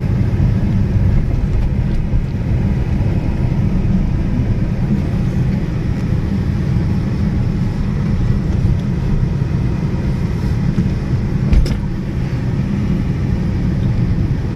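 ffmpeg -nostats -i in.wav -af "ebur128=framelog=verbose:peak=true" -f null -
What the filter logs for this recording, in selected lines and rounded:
Integrated loudness:
  I:         -17.4 LUFS
  Threshold: -27.4 LUFS
Loudness range:
  LRA:         0.6 LU
  Threshold: -37.5 LUFS
  LRA low:   -17.8 LUFS
  LRA high:  -17.2 LUFS
True peak:
  Peak:       -1.2 dBFS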